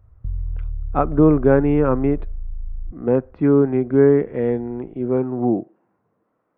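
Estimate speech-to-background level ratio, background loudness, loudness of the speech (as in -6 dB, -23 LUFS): 14.0 dB, -33.0 LUFS, -19.0 LUFS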